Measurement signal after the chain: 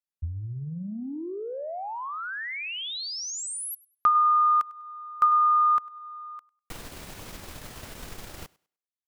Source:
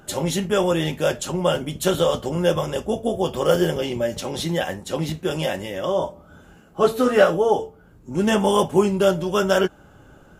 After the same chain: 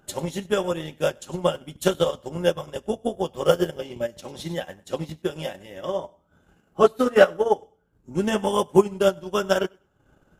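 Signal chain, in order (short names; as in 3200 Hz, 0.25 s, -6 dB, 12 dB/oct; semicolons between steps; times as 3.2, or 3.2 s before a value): thinning echo 0.1 s, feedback 23%, high-pass 190 Hz, level -14.5 dB; transient shaper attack +5 dB, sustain -9 dB; upward expander 1.5:1, over -27 dBFS; gain -1 dB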